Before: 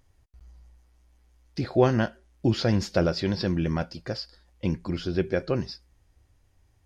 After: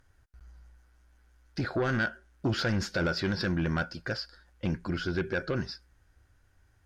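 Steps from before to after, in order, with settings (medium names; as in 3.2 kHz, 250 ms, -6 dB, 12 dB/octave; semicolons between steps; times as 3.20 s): peaking EQ 1.5 kHz +14.5 dB 0.4 oct; peak limiter -14 dBFS, peak gain reduction 8 dB; sine folder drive 3 dB, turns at -14 dBFS; trim -8.5 dB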